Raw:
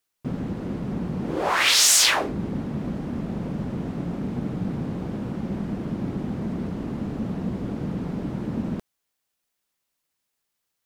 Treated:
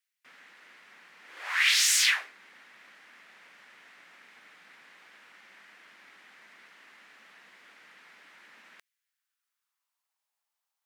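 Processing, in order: high-pass sweep 1.9 kHz -> 830 Hz, 8.88–10.20 s; trim -8 dB

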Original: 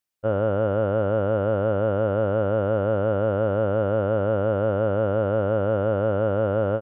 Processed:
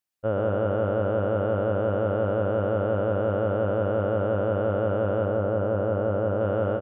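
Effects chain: 5.25–6.41 s: treble shelf 2.5 kHz -9.5 dB; delay 121 ms -6 dB; trim -2.5 dB

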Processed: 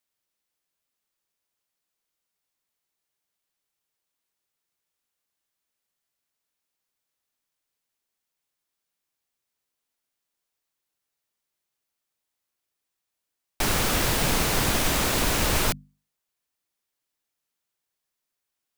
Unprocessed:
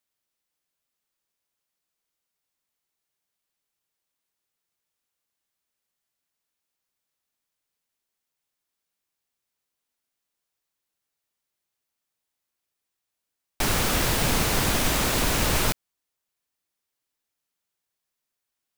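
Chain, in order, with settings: hum notches 50/100/150/200/250 Hz

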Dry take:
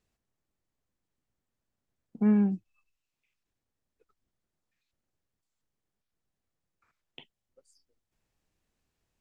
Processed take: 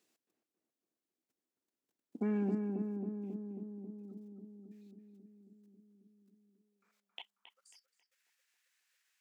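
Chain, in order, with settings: treble shelf 2.1 kHz +9 dB; level held to a coarse grid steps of 16 dB; filtered feedback delay 271 ms, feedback 77%, low-pass 1.1 kHz, level -3.5 dB; high-pass sweep 300 Hz -> 1.7 kHz, 6.47–7.84 s; trim +1 dB

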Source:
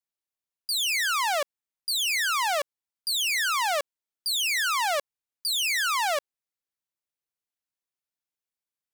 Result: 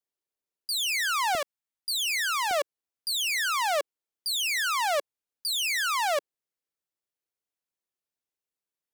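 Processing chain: peaking EQ 410 Hz +9.5 dB 1.2 oct, from 1.35 s -2 dB, from 2.51 s +6.5 dB; trim -2 dB

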